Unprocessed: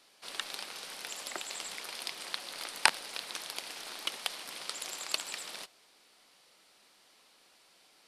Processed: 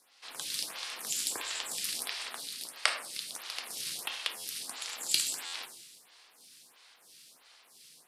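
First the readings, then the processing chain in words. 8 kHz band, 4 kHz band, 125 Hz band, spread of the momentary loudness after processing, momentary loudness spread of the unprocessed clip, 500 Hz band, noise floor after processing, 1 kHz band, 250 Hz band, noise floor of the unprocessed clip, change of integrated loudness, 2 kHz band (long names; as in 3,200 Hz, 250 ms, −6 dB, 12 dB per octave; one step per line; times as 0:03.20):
+5.0 dB, +2.0 dB, can't be measured, 10 LU, 13 LU, −2.5 dB, −63 dBFS, −4.0 dB, −1.5 dB, −64 dBFS, +2.0 dB, −2.0 dB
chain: high-pass filter 410 Hz 24 dB per octave
high-shelf EQ 3,100 Hz +10.5 dB
automatic gain control gain up to 4 dB
coupled-rooms reverb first 0.72 s, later 2.5 s, DRR 3 dB
ring modulation 280 Hz
buffer that repeats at 0:04.36/0:05.45, samples 512, times 6
phaser with staggered stages 1.5 Hz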